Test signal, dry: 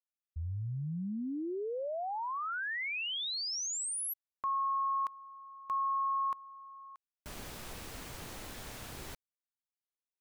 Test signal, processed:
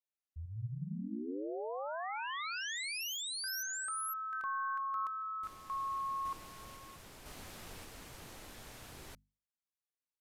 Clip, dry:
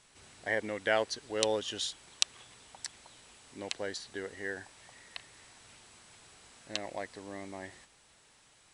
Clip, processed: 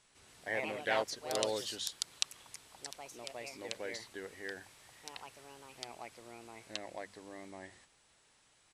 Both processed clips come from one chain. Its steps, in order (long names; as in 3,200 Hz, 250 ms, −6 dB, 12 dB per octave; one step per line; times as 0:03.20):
delay with pitch and tempo change per echo 150 ms, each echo +3 semitones, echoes 2
mains-hum notches 50/100/150/200/250 Hz
downsampling to 32,000 Hz
level −5.5 dB